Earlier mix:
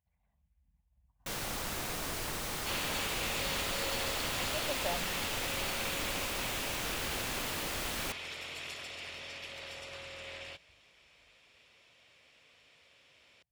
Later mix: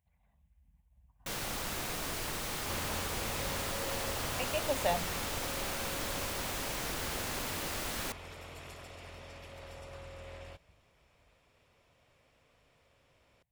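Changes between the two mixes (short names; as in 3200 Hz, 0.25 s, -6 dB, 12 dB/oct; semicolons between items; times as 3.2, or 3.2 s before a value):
speech +6.0 dB; second sound: remove weighting filter D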